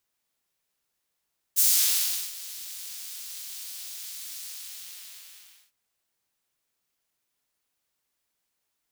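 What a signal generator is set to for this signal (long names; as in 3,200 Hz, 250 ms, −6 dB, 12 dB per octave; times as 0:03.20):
subtractive patch with vibrato F#2, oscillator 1 square, noise −6 dB, filter highpass, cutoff 2,700 Hz, Q 1, filter envelope 1.5 octaves, filter sustain 45%, attack 28 ms, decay 0.72 s, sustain −20 dB, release 1.29 s, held 2.87 s, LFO 4.5 Hz, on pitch 99 cents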